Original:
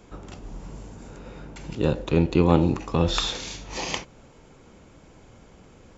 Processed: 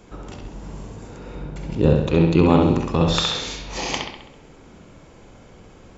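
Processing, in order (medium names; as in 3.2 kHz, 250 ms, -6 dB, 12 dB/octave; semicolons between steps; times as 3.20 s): 1.35–1.95 s: tilt shelf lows +4.5 dB, about 710 Hz; on a send: bucket-brigade echo 66 ms, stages 2048, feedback 54%, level -3.5 dB; on the sum: trim +2.5 dB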